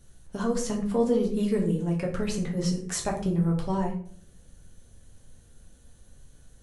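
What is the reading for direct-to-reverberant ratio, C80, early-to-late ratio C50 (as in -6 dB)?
-0.5 dB, 12.5 dB, 8.5 dB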